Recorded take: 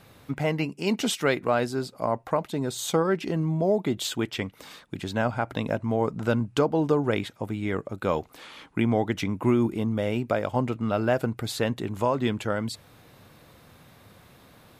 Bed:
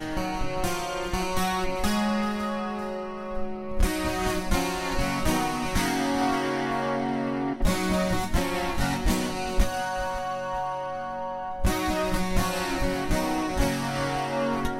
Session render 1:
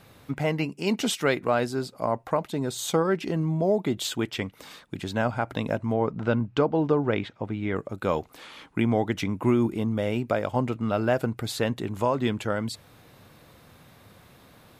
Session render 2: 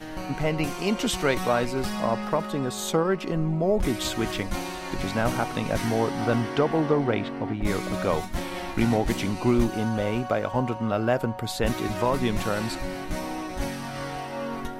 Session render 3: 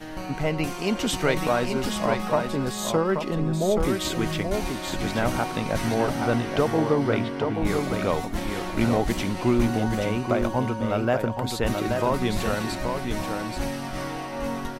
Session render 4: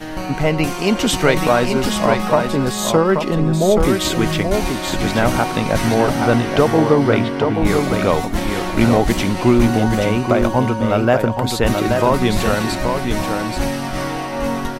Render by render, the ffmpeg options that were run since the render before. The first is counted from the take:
-filter_complex "[0:a]asettb=1/sr,asplit=3[a][b][c];[a]atrim=end=5.934[d];[b]atrim=start=5.93:end=7.76,asetpts=PTS-STARTPTS,afade=t=in:d=0.004:c=qsin,afade=t=out:st=1.826:d=0.004:c=qsin,lowpass=3.6k[e];[c]atrim=start=7.756[f];[d][e]acrossfade=d=0.004:c1=hsin:c2=qsin[g];[g][f]acrossfade=d=0.004:c1=qsin:c2=hsin"
-filter_complex "[1:a]volume=-5.5dB[a];[0:a][a]amix=inputs=2:normalize=0"
-af "aecho=1:1:829:0.531"
-af "volume=8.5dB,alimiter=limit=-2dB:level=0:latency=1"

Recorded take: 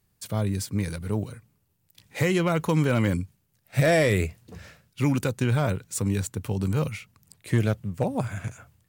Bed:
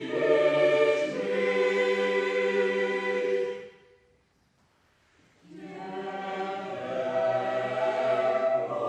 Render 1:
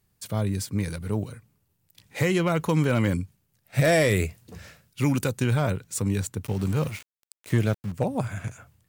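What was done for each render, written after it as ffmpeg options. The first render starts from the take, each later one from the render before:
-filter_complex "[0:a]asettb=1/sr,asplit=3[a][b][c];[a]atrim=end=3.844[d];[b]atrim=start=3.84:end=5.54,asetpts=PTS-STARTPTS,afade=t=in:d=0.004:c=qsin,afade=t=out:st=1.696:d=0.004:c=qsin,highshelf=f=5.5k:g=5[e];[c]atrim=start=5.536[f];[d][e]acrossfade=d=0.004:c1=hsin:c2=qsin[g];[g][f]acrossfade=d=0.004:c1=qsin:c2=hsin,asettb=1/sr,asplit=3[h][i][j];[h]atrim=end=6.444[k];[i]atrim=start=6.44:end=7.92,asetpts=PTS-STARTPTS,afade=t=in:d=0.004:c=qsin,afade=t=out:st=1.476:d=0.004:c=qsin,aeval=exprs='val(0)*gte(abs(val(0)),0.0126)':c=same[l];[j]atrim=start=7.916[m];[k][l]acrossfade=d=0.004:c1=hsin:c2=qsin[n];[n][m]acrossfade=d=0.004:c1=qsin:c2=hsin"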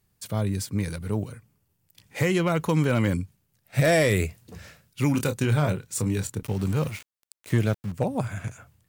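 -filter_complex "[0:a]asettb=1/sr,asplit=3[a][b][c];[a]atrim=end=1.204[d];[b]atrim=start=1.2:end=2.34,asetpts=PTS-STARTPTS,afade=t=in:d=0.004:c=qsin,afade=t=out:st=1.136:d=0.004:c=qsin,bandreject=f=3.9k:w=15[e];[c]atrim=start=2.336[f];[d][e]acrossfade=d=0.004:c1=hsin:c2=qsin[g];[g][f]acrossfade=d=0.004:c1=qsin:c2=hsin,asettb=1/sr,asplit=3[h][i][j];[h]atrim=end=5.114[k];[i]atrim=start=5.11:end=6.43,asetpts=PTS-STARTPTS,afade=t=in:d=0.004:c=qsin,afade=t=out:st=1.316:d=0.004:c=qsin,asplit=2[l][m];[m]adelay=27,volume=-8dB[n];[l][n]amix=inputs=2:normalize=0,atrim=end_sample=58212[o];[j]atrim=start=6.426[p];[k][o]acrossfade=d=0.004:c1=hsin:c2=qsin[q];[q][p]acrossfade=d=0.004:c1=qsin:c2=hsin"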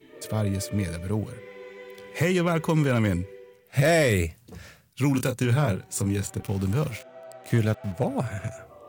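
-filter_complex "[1:a]volume=-18dB[a];[0:a][a]amix=inputs=2:normalize=0"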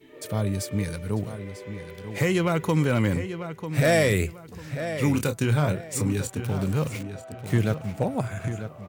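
-filter_complex "[0:a]asplit=2[a][b];[b]adelay=944,lowpass=f=4k:p=1,volume=-10dB,asplit=2[c][d];[d]adelay=944,lowpass=f=4k:p=1,volume=0.29,asplit=2[e][f];[f]adelay=944,lowpass=f=4k:p=1,volume=0.29[g];[a][c][e][g]amix=inputs=4:normalize=0"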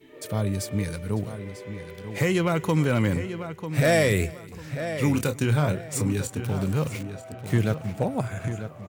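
-af "aecho=1:1:317:0.0708"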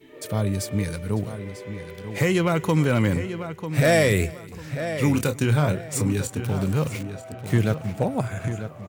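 -af "volume=2dB"

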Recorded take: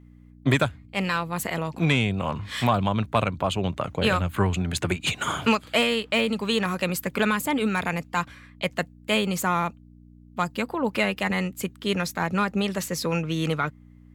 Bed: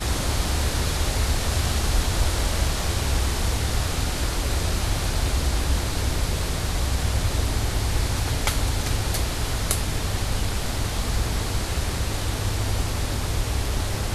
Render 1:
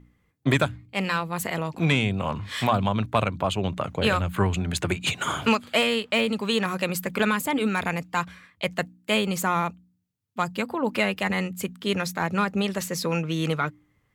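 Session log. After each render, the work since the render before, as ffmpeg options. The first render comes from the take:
-af "bandreject=f=60:t=h:w=4,bandreject=f=120:t=h:w=4,bandreject=f=180:t=h:w=4,bandreject=f=240:t=h:w=4,bandreject=f=300:t=h:w=4"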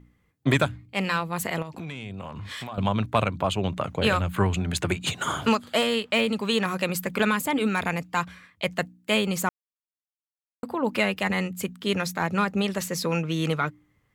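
-filter_complex "[0:a]asettb=1/sr,asplit=3[a][b][c];[a]atrim=end=1.624[d];[b]atrim=start=1.62:end=2.78,asetpts=PTS-STARTPTS,afade=t=in:d=0.004:c=qsin,afade=t=out:st=1.156:d=0.004:c=qsin,acompressor=threshold=-32dB:ratio=10:attack=3.2:release=140:knee=1:detection=peak[e];[c]atrim=start=2.776[f];[d][e]acrossfade=d=0.004:c1=hsin:c2=qsin[g];[g][f]acrossfade=d=0.004:c1=qsin:c2=hsin,asettb=1/sr,asplit=3[h][i][j];[h]atrim=end=4.974[k];[i]atrim=start=4.97:end=5.94,asetpts=PTS-STARTPTS,afade=t=in:d=0.004:c=qsin,afade=t=out:st=0.966:d=0.004:c=qsin,equalizer=f=2.4k:t=o:w=0.41:g=-7[l];[j]atrim=start=5.936[m];[k][l]acrossfade=d=0.004:c1=hsin:c2=qsin[n];[n][m]acrossfade=d=0.004:c1=qsin:c2=hsin,asplit=3[o][p][q];[o]atrim=end=9.49,asetpts=PTS-STARTPTS,afade=t=out:st=9.486:d=0.004:c=hsin[r];[p]atrim=start=9.49:end=10.63,asetpts=PTS-STARTPTS,volume=0[s];[q]atrim=start=10.63,asetpts=PTS-STARTPTS,afade=t=in:d=0.004:c=hsin[t];[r][s][t]concat=n=3:v=0:a=1"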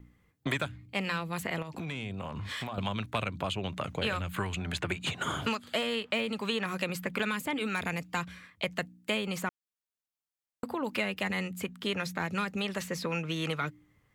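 -filter_complex "[0:a]acrossover=split=600|1600|3300[a][b][c][d];[a]acompressor=threshold=-34dB:ratio=4[e];[b]acompressor=threshold=-41dB:ratio=4[f];[c]acompressor=threshold=-34dB:ratio=4[g];[d]acompressor=threshold=-45dB:ratio=4[h];[e][f][g][h]amix=inputs=4:normalize=0"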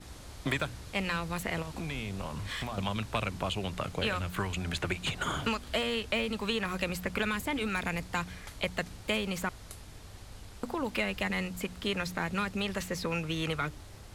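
-filter_complex "[1:a]volume=-23dB[a];[0:a][a]amix=inputs=2:normalize=0"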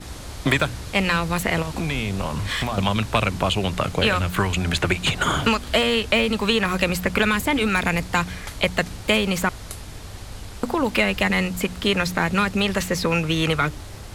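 -af "volume=11.5dB"

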